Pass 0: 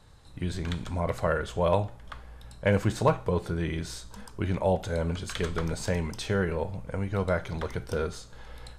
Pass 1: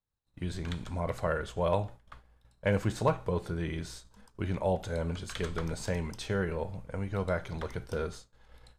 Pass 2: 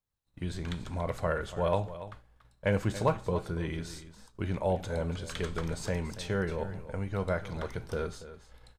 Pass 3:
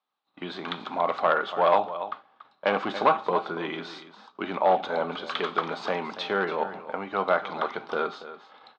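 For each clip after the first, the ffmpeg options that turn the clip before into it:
ffmpeg -i in.wav -af "agate=range=-33dB:threshold=-35dB:ratio=3:detection=peak,volume=-4dB" out.wav
ffmpeg -i in.wav -af "aecho=1:1:284:0.2" out.wav
ffmpeg -i in.wav -af "volume=23dB,asoftclip=hard,volume=-23dB,highpass=frequency=260:width=0.5412,highpass=frequency=260:width=1.3066,equalizer=frequency=320:width_type=q:width=4:gain=-3,equalizer=frequency=490:width_type=q:width=4:gain=-5,equalizer=frequency=780:width_type=q:width=4:gain=8,equalizer=frequency=1200:width_type=q:width=4:gain=10,equalizer=frequency=1800:width_type=q:width=4:gain=-3,equalizer=frequency=3600:width_type=q:width=4:gain=4,lowpass=frequency=4000:width=0.5412,lowpass=frequency=4000:width=1.3066,volume=8dB" out.wav

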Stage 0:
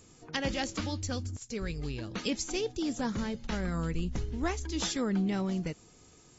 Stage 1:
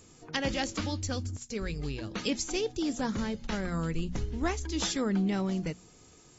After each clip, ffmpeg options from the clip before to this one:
ffmpeg -i in.wav -af "bandreject=frequency=60:width_type=h:width=6,bandreject=frequency=120:width_type=h:width=6,bandreject=frequency=180:width_type=h:width=6,bandreject=frequency=240:width_type=h:width=6,volume=1.5dB" out.wav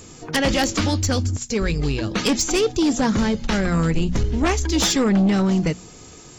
ffmpeg -i in.wav -af "aeval=exprs='0.211*sin(PI/2*3.16*val(0)/0.211)':channel_layout=same" out.wav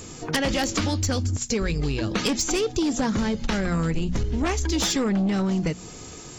ffmpeg -i in.wav -af "acompressor=threshold=-24dB:ratio=6,volume=2.5dB" out.wav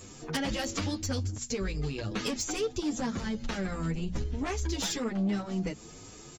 ffmpeg -i in.wav -filter_complex "[0:a]asplit=2[link_01][link_02];[link_02]adelay=8.2,afreqshift=2.5[link_03];[link_01][link_03]amix=inputs=2:normalize=1,volume=-5dB" out.wav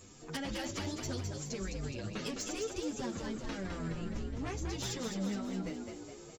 ffmpeg -i in.wav -filter_complex "[0:a]asplit=8[link_01][link_02][link_03][link_04][link_05][link_06][link_07][link_08];[link_02]adelay=209,afreqshift=53,volume=-5.5dB[link_09];[link_03]adelay=418,afreqshift=106,volume=-11dB[link_10];[link_04]adelay=627,afreqshift=159,volume=-16.5dB[link_11];[link_05]adelay=836,afreqshift=212,volume=-22dB[link_12];[link_06]adelay=1045,afreqshift=265,volume=-27.6dB[link_13];[link_07]adelay=1254,afreqshift=318,volume=-33.1dB[link_14];[link_08]adelay=1463,afreqshift=371,volume=-38.6dB[link_15];[link_01][link_09][link_10][link_11][link_12][link_13][link_14][link_15]amix=inputs=8:normalize=0,volume=-7.5dB" out.wav

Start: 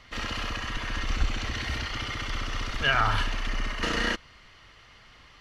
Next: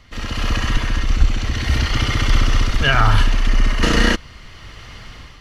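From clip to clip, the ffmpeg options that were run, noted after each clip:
ffmpeg -i in.wav -af "lowshelf=frequency=350:gain=10,dynaudnorm=framelen=180:gausssize=5:maxgain=13dB,highshelf=frequency=6100:gain=8,volume=-1dB" out.wav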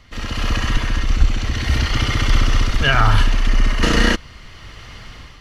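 ffmpeg -i in.wav -af anull out.wav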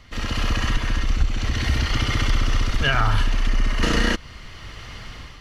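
ffmpeg -i in.wav -af "acompressor=threshold=-19dB:ratio=2" out.wav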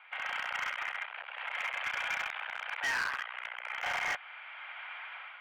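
ffmpeg -i in.wav -af "aresample=16000,asoftclip=type=tanh:threshold=-21dB,aresample=44100,highpass=frequency=520:width_type=q:width=0.5412,highpass=frequency=520:width_type=q:width=1.307,lowpass=frequency=2500:width_type=q:width=0.5176,lowpass=frequency=2500:width_type=q:width=0.7071,lowpass=frequency=2500:width_type=q:width=1.932,afreqshift=250,asoftclip=type=hard:threshold=-28.5dB" out.wav

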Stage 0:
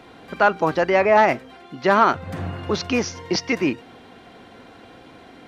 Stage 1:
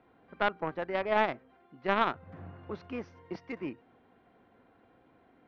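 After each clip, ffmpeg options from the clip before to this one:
ffmpeg -i in.wav -af "lowpass=1900,aeval=exprs='0.631*(cos(1*acos(clip(val(0)/0.631,-1,1)))-cos(1*PI/2))+0.141*(cos(3*acos(clip(val(0)/0.631,-1,1)))-cos(3*PI/2))':channel_layout=same,volume=-8dB" out.wav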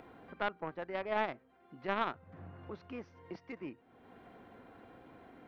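ffmpeg -i in.wav -af "acompressor=mode=upward:threshold=-36dB:ratio=2.5,volume=-6.5dB" out.wav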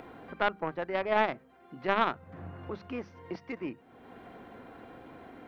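ffmpeg -i in.wav -af "bandreject=frequency=50:width_type=h:width=6,bandreject=frequency=100:width_type=h:width=6,bandreject=frequency=150:width_type=h:width=6,bandreject=frequency=200:width_type=h:width=6,volume=7dB" out.wav

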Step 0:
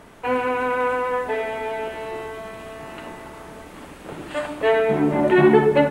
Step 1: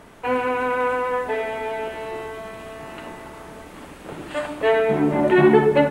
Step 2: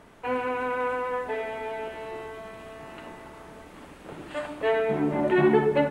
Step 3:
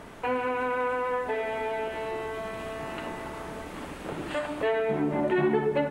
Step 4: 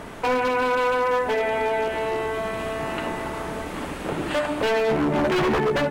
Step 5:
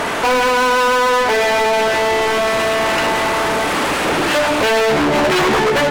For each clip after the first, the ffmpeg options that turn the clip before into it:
ffmpeg -i in.wav -af anull out.wav
ffmpeg -i in.wav -af "highshelf=frequency=8000:gain=-4.5,volume=-6dB" out.wav
ffmpeg -i in.wav -af "acompressor=threshold=-39dB:ratio=2,volume=7.5dB" out.wav
ffmpeg -i in.wav -af "aeval=exprs='0.0668*(abs(mod(val(0)/0.0668+3,4)-2)-1)':channel_layout=same,volume=7.5dB" out.wav
ffmpeg -i in.wav -filter_complex "[0:a]asplit=2[link_01][link_02];[link_02]highpass=frequency=720:poles=1,volume=26dB,asoftclip=type=tanh:threshold=-16dB[link_03];[link_01][link_03]amix=inputs=2:normalize=0,lowpass=frequency=7400:poles=1,volume=-6dB,volume=5.5dB" out.wav

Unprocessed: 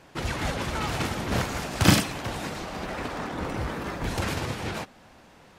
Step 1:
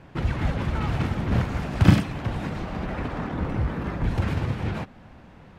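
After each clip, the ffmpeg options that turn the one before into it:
ffmpeg -i in.wav -filter_complex "[0:a]bass=frequency=250:gain=10,treble=frequency=4000:gain=-13,asplit=2[link_01][link_02];[link_02]acompressor=threshold=-29dB:ratio=6,volume=-1dB[link_03];[link_01][link_03]amix=inputs=2:normalize=0,volume=-4.5dB" out.wav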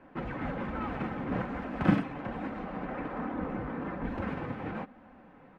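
ffmpeg -i in.wav -filter_complex "[0:a]acrossover=split=180 2400:gain=0.224 1 0.1[link_01][link_02][link_03];[link_01][link_02][link_03]amix=inputs=3:normalize=0,aecho=1:1:3.9:0.32,flanger=delay=2.9:depth=5:regen=-44:speed=1.2:shape=triangular" out.wav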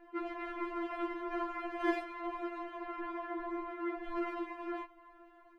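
ffmpeg -i in.wav -af "afftfilt=real='re*4*eq(mod(b,16),0)':imag='im*4*eq(mod(b,16),0)':win_size=2048:overlap=0.75,volume=1dB" out.wav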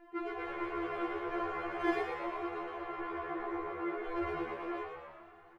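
ffmpeg -i in.wav -filter_complex "[0:a]asplit=8[link_01][link_02][link_03][link_04][link_05][link_06][link_07][link_08];[link_02]adelay=117,afreqshift=75,volume=-6dB[link_09];[link_03]adelay=234,afreqshift=150,volume=-10.9dB[link_10];[link_04]adelay=351,afreqshift=225,volume=-15.8dB[link_11];[link_05]adelay=468,afreqshift=300,volume=-20.6dB[link_12];[link_06]adelay=585,afreqshift=375,volume=-25.5dB[link_13];[link_07]adelay=702,afreqshift=450,volume=-30.4dB[link_14];[link_08]adelay=819,afreqshift=525,volume=-35.3dB[link_15];[link_01][link_09][link_10][link_11][link_12][link_13][link_14][link_15]amix=inputs=8:normalize=0" out.wav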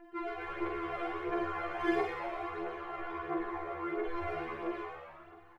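ffmpeg -i in.wav -filter_complex "[0:a]aphaser=in_gain=1:out_gain=1:delay=1.7:decay=0.47:speed=1.5:type=triangular,asplit=2[link_01][link_02];[link_02]adelay=45,volume=-6dB[link_03];[link_01][link_03]amix=inputs=2:normalize=0,volume=-1dB" out.wav

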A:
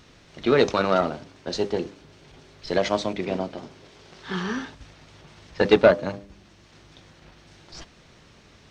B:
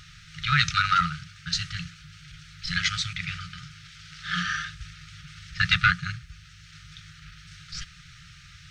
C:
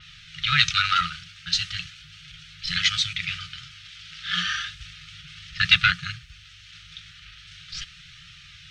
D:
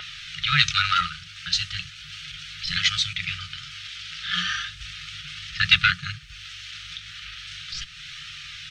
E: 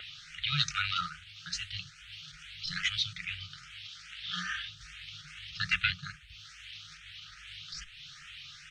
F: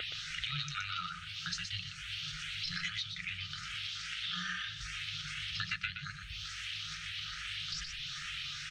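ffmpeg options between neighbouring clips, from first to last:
ffmpeg -i in.wav -af "afftfilt=real='re*(1-between(b*sr/4096,180,1200))':imag='im*(1-between(b*sr/4096,180,1200))':win_size=4096:overlap=0.75,volume=6dB" out.wav
ffmpeg -i in.wav -af "equalizer=frequency=3100:width_type=o:width=1.2:gain=12,flanger=delay=1.5:depth=2.3:regen=-60:speed=0.36:shape=triangular,adynamicequalizer=threshold=0.0178:dfrequency=5400:dqfactor=0.7:tfrequency=5400:tqfactor=0.7:attack=5:release=100:ratio=0.375:range=2.5:mode=boostabove:tftype=highshelf" out.wav
ffmpeg -i in.wav -filter_complex "[0:a]acrossover=split=550[link_01][link_02];[link_01]asplit=2[link_03][link_04];[link_04]adelay=21,volume=-7dB[link_05];[link_03][link_05]amix=inputs=2:normalize=0[link_06];[link_02]acompressor=mode=upward:threshold=-29dB:ratio=2.5[link_07];[link_06][link_07]amix=inputs=2:normalize=0" out.wav
ffmpeg -i in.wav -filter_complex "[0:a]asplit=2[link_01][link_02];[link_02]afreqshift=2.4[link_03];[link_01][link_03]amix=inputs=2:normalize=1,volume=-6.5dB" out.wav
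ffmpeg -i in.wav -af "acompressor=threshold=-44dB:ratio=6,equalizer=frequency=430:width_type=o:width=1.3:gain=7.5,aecho=1:1:121:0.501,volume=7dB" out.wav

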